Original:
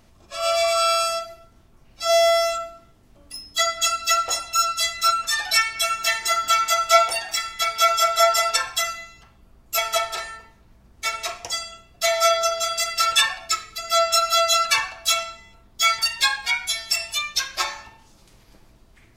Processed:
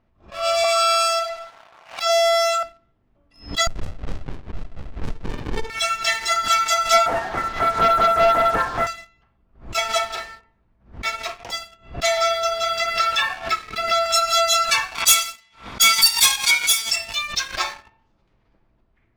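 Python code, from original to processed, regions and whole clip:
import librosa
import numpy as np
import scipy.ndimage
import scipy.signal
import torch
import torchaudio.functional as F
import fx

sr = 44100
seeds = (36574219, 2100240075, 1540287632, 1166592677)

y = fx.chain(x, sr, fx.steep_highpass(hz=640.0, slope=36),
    fx.high_shelf(hz=10000.0, db=-5.5),
    fx.env_flatten(amount_pct=50), at=(0.64, 2.63))
y = fx.chain(y, sr, fx.echo_single(ms=948, db=-10.0),
    fx.running_max(window=65), at=(3.67, 5.7))
y = fx.chain(y, sr, fx.delta_mod(bps=32000, step_db=-28.5),
    fx.lowpass(hz=1600.0, slope=24),
    fx.leveller(passes=2), at=(7.06, 8.87))
y = fx.chain(y, sr, fx.air_absorb(metres=130.0),
    fx.band_squash(depth_pct=100), at=(12.17, 14.06))
y = fx.chain(y, sr, fx.lower_of_two(delay_ms=0.87),
    fx.tilt_eq(slope=4.0), at=(14.95, 16.91))
y = fx.env_lowpass(y, sr, base_hz=2100.0, full_db=-15.0)
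y = fx.leveller(y, sr, passes=2)
y = fx.pre_swell(y, sr, db_per_s=150.0)
y = y * 10.0 ** (-6.5 / 20.0)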